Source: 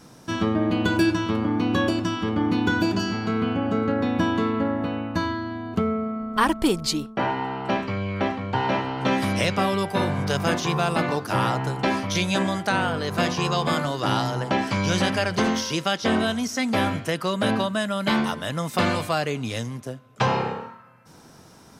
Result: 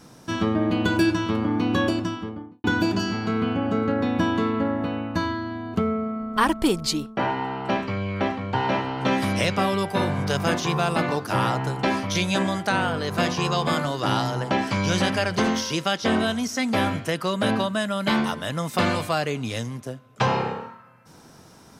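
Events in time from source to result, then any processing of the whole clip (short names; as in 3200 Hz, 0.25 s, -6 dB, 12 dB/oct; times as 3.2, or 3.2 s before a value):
1.86–2.64 studio fade out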